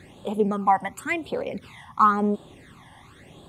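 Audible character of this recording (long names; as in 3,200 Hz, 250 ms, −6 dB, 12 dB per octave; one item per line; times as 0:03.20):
phaser sweep stages 12, 0.94 Hz, lowest notch 420–2,000 Hz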